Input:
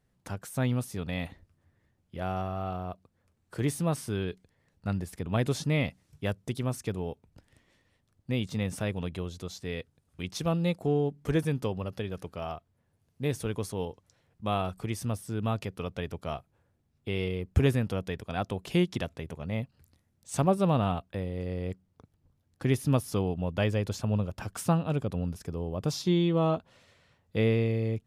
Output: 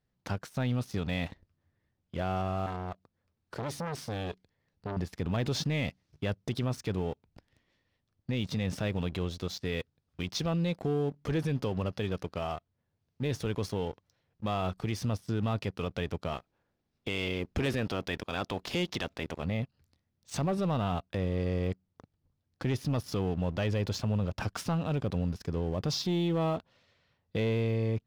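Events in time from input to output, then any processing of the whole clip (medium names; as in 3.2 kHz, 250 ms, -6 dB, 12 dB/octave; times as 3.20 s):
2.66–4.97 s: transformer saturation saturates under 1.3 kHz
16.32–19.42 s: spectral peaks clipped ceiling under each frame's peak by 12 dB
whole clip: resonant high shelf 6.7 kHz -9.5 dB, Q 1.5; waveshaping leveller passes 2; peak limiter -20 dBFS; trim -3.5 dB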